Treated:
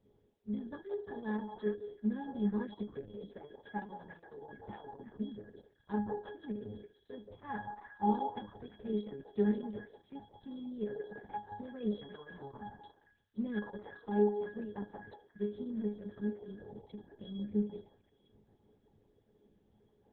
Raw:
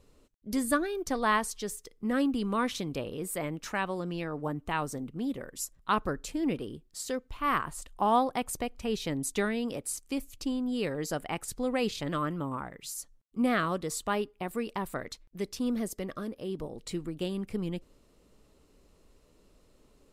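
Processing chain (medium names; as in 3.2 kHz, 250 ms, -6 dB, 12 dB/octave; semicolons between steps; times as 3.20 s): pitch-class resonator G#, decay 0.32 s; repeats whose band climbs or falls 172 ms, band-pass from 640 Hz, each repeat 1.4 oct, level -4 dB; trim +8 dB; Opus 6 kbps 48 kHz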